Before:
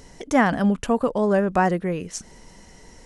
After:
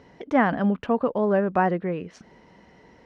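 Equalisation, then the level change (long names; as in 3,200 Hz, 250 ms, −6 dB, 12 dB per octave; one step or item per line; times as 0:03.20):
high-pass filter 67 Hz
high-frequency loss of the air 330 metres
low-shelf EQ 120 Hz −8.5 dB
0.0 dB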